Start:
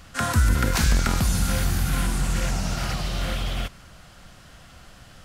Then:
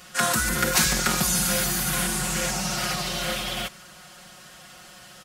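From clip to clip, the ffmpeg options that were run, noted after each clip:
-af "highpass=f=300:p=1,highshelf=f=5600:g=7,aecho=1:1:5.5:0.97"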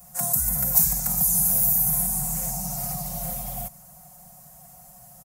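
-filter_complex "[0:a]firequalizer=gain_entry='entry(150,0);entry(340,-26);entry(700,-1);entry(1400,-23);entry(2100,-20);entry(3100,-28);entry(6400,-8);entry(14000,10)':delay=0.05:min_phase=1,acrossover=split=360|3000[s0][s1][s2];[s1]acompressor=threshold=0.00891:ratio=2.5[s3];[s0][s3][s2]amix=inputs=3:normalize=0,acrossover=split=910[s4][s5];[s4]alimiter=level_in=1.58:limit=0.0631:level=0:latency=1:release=387,volume=0.631[s6];[s6][s5]amix=inputs=2:normalize=0,volume=1.41"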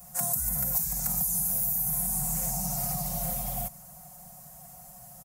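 -af "acompressor=threshold=0.0562:ratio=6"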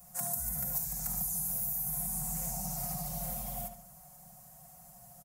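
-filter_complex "[0:a]asplit=2[s0][s1];[s1]adelay=73,lowpass=f=4200:p=1,volume=0.422,asplit=2[s2][s3];[s3]adelay=73,lowpass=f=4200:p=1,volume=0.41,asplit=2[s4][s5];[s5]adelay=73,lowpass=f=4200:p=1,volume=0.41,asplit=2[s6][s7];[s7]adelay=73,lowpass=f=4200:p=1,volume=0.41,asplit=2[s8][s9];[s9]adelay=73,lowpass=f=4200:p=1,volume=0.41[s10];[s0][s2][s4][s6][s8][s10]amix=inputs=6:normalize=0,volume=0.473"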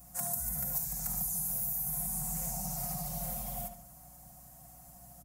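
-af "aeval=exprs='val(0)+0.001*(sin(2*PI*60*n/s)+sin(2*PI*2*60*n/s)/2+sin(2*PI*3*60*n/s)/3+sin(2*PI*4*60*n/s)/4+sin(2*PI*5*60*n/s)/5)':c=same"

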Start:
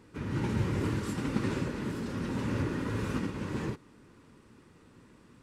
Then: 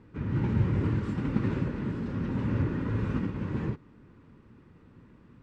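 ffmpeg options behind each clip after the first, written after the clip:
-af "lowpass=f=8600:w=0.5412,lowpass=f=8600:w=1.3066,bass=f=250:g=7,treble=f=4000:g=-15,volume=0.841"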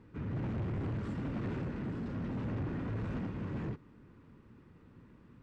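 -af "asoftclip=type=tanh:threshold=0.0335,volume=0.708"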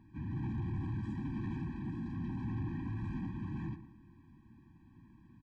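-filter_complex "[0:a]asplit=2[s0][s1];[s1]adelay=116,lowpass=f=2000:p=1,volume=0.266,asplit=2[s2][s3];[s3]adelay=116,lowpass=f=2000:p=1,volume=0.35,asplit=2[s4][s5];[s5]adelay=116,lowpass=f=2000:p=1,volume=0.35,asplit=2[s6][s7];[s7]adelay=116,lowpass=f=2000:p=1,volume=0.35[s8];[s2][s4][s6][s8]amix=inputs=4:normalize=0[s9];[s0][s9]amix=inputs=2:normalize=0,afftfilt=real='re*eq(mod(floor(b*sr/1024/380),2),0)':imag='im*eq(mod(floor(b*sr/1024/380),2),0)':win_size=1024:overlap=0.75,volume=0.841"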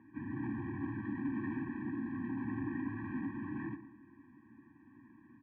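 -af "highpass=170,equalizer=f=170:t=q:w=4:g=-10,equalizer=f=280:t=q:w=4:g=7,equalizer=f=470:t=q:w=4:g=5,equalizer=f=670:t=q:w=4:g=-6,equalizer=f=1200:t=q:w=4:g=5,equalizer=f=1800:t=q:w=4:g=8,lowpass=f=2400:w=0.5412,lowpass=f=2400:w=1.3066,volume=1.19"

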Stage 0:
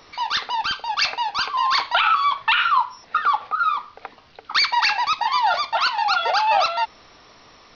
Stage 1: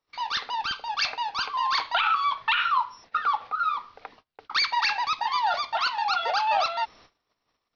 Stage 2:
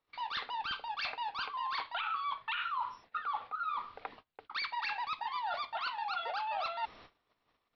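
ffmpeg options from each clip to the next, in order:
-af "agate=range=0.0282:threshold=0.00562:ratio=16:detection=peak,volume=0.531"
-af "lowpass=f=4100:w=0.5412,lowpass=f=4100:w=1.3066,areverse,acompressor=threshold=0.0158:ratio=4,areverse"

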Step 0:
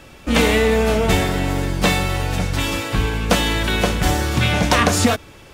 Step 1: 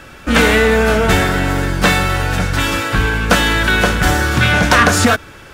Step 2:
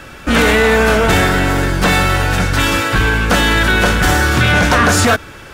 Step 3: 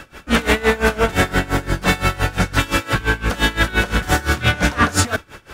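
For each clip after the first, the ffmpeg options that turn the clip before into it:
-af "equalizer=f=1500:t=o:w=0.53:g=10,acontrast=21,volume=0.891"
-filter_complex "[0:a]acrossover=split=950[s0][s1];[s0]asoftclip=type=hard:threshold=0.211[s2];[s1]alimiter=limit=0.316:level=0:latency=1:release=13[s3];[s2][s3]amix=inputs=2:normalize=0,volume=1.41"
-af "aeval=exprs='val(0)*pow(10,-21*(0.5-0.5*cos(2*PI*5.8*n/s))/20)':c=same"

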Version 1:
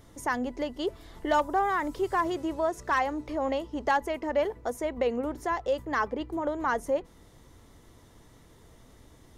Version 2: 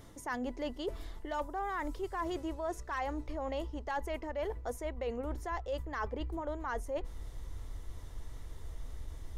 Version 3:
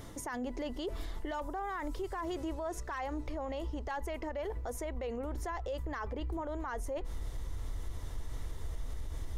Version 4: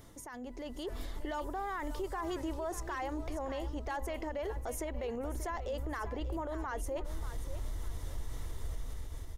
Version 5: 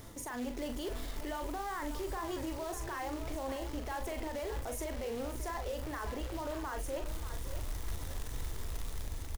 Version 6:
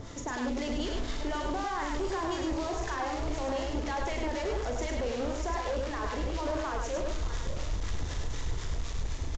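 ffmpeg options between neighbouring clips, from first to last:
-af "asubboost=boost=10:cutoff=58,areverse,acompressor=threshold=0.0178:ratio=6,areverse,volume=1.12"
-af "alimiter=level_in=4.22:limit=0.0631:level=0:latency=1:release=78,volume=0.237,volume=2.11"
-af "dynaudnorm=f=310:g=5:m=2.51,crystalizer=i=0.5:c=0,aecho=1:1:586|1172|1758:0.251|0.0754|0.0226,volume=0.398"
-filter_complex "[0:a]alimiter=level_in=4.22:limit=0.0631:level=0:latency=1:release=38,volume=0.237,acrusher=bits=3:mode=log:mix=0:aa=0.000001,asplit=2[s0][s1];[s1]adelay=41,volume=0.447[s2];[s0][s2]amix=inputs=2:normalize=0,volume=1.68"
-filter_complex "[0:a]acrossover=split=1000[s0][s1];[s0]aeval=exprs='val(0)*(1-0.7/2+0.7/2*cos(2*PI*4*n/s))':c=same[s2];[s1]aeval=exprs='val(0)*(1-0.7/2-0.7/2*cos(2*PI*4*n/s))':c=same[s3];[s2][s3]amix=inputs=2:normalize=0,aresample=16000,aeval=exprs='0.0398*sin(PI/2*2*val(0)/0.0398)':c=same,aresample=44100,aecho=1:1:102:0.668"

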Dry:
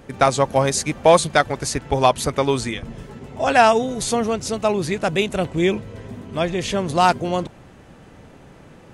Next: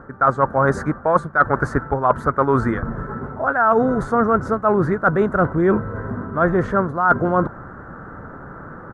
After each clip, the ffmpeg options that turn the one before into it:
-af "firequalizer=gain_entry='entry(790,0);entry(1400,14);entry(2500,-28)':delay=0.05:min_phase=1,areverse,acompressor=threshold=0.1:ratio=16,areverse,volume=2.37"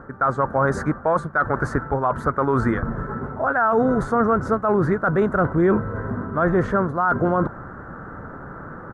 -af "alimiter=limit=0.299:level=0:latency=1:release=20"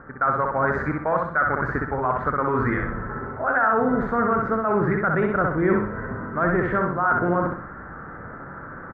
-af "lowpass=f=2200:t=q:w=2.6,aecho=1:1:63|126|189|252|315:0.708|0.283|0.113|0.0453|0.0181,volume=0.562"

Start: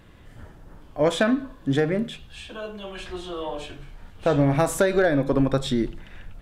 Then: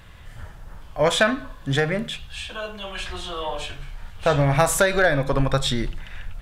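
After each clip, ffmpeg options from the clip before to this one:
-af "equalizer=f=300:t=o:w=1.6:g=-14,volume=2.37"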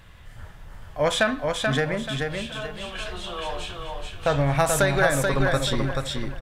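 -af "aecho=1:1:433|866|1299|1732:0.631|0.196|0.0606|0.0188,volume=0.708"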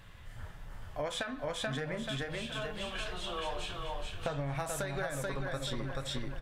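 -af "acompressor=threshold=0.0398:ratio=12,flanger=delay=6.9:depth=3.2:regen=-62:speed=1.6:shape=sinusoidal"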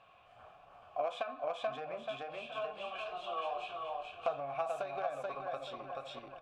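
-filter_complex "[0:a]aeval=exprs='0.1*(cos(1*acos(clip(val(0)/0.1,-1,1)))-cos(1*PI/2))+0.0447*(cos(4*acos(clip(val(0)/0.1,-1,1)))-cos(4*PI/2))+0.0224*(cos(6*acos(clip(val(0)/0.1,-1,1)))-cos(6*PI/2))':c=same,asplit=3[s0][s1][s2];[s0]bandpass=f=730:t=q:w=8,volume=1[s3];[s1]bandpass=f=1090:t=q:w=8,volume=0.501[s4];[s2]bandpass=f=2440:t=q:w=8,volume=0.355[s5];[s3][s4][s5]amix=inputs=3:normalize=0,volume=2.82"

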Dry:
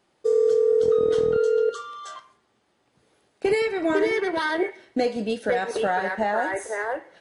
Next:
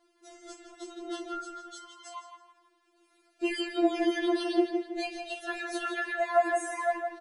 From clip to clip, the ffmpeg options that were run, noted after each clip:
-filter_complex "[0:a]asplit=2[s0][s1];[s1]adelay=162,lowpass=f=3700:p=1,volume=0.501,asplit=2[s2][s3];[s3]adelay=162,lowpass=f=3700:p=1,volume=0.38,asplit=2[s4][s5];[s5]adelay=162,lowpass=f=3700:p=1,volume=0.38,asplit=2[s6][s7];[s7]adelay=162,lowpass=f=3700:p=1,volume=0.38,asplit=2[s8][s9];[s9]adelay=162,lowpass=f=3700:p=1,volume=0.38[s10];[s2][s4][s6][s8][s10]amix=inputs=5:normalize=0[s11];[s0][s11]amix=inputs=2:normalize=0,afftfilt=real='re*4*eq(mod(b,16),0)':imag='im*4*eq(mod(b,16),0)':win_size=2048:overlap=0.75"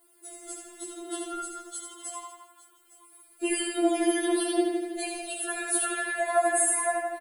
-filter_complex "[0:a]aexciter=amount=11.2:drive=8.6:freq=8500,asplit=2[s0][s1];[s1]aecho=0:1:79|859:0.596|0.119[s2];[s0][s2]amix=inputs=2:normalize=0"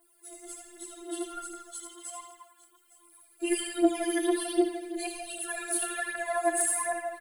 -af "aphaser=in_gain=1:out_gain=1:delay=3.4:decay=0.6:speed=1.3:type=triangular,volume=0.562"

